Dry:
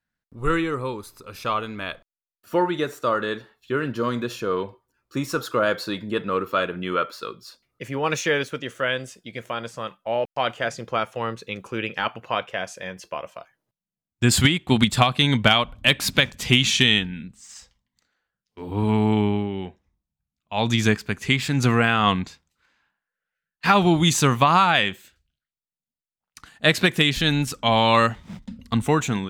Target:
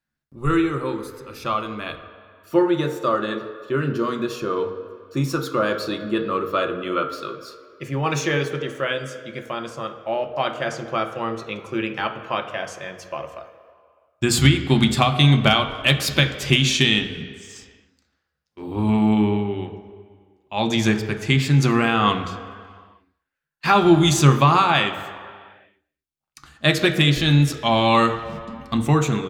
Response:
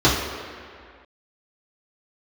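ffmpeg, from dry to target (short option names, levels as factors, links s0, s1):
-filter_complex "[0:a]bandreject=f=60:t=h:w=6,bandreject=f=120:t=h:w=6,bandreject=f=180:t=h:w=6,bandreject=f=240:t=h:w=6,bandreject=f=300:t=h:w=6,asplit=2[s0][s1];[s1]adelay=240,highpass=300,lowpass=3400,asoftclip=type=hard:threshold=0.251,volume=0.0447[s2];[s0][s2]amix=inputs=2:normalize=0,asplit=2[s3][s4];[1:a]atrim=start_sample=2205,asetrate=48510,aresample=44100[s5];[s4][s5]afir=irnorm=-1:irlink=0,volume=0.0501[s6];[s3][s6]amix=inputs=2:normalize=0,volume=0.891"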